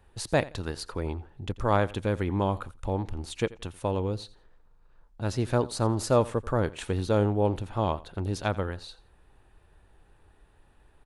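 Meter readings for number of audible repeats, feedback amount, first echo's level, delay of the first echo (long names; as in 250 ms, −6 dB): 2, 23%, −20.0 dB, 86 ms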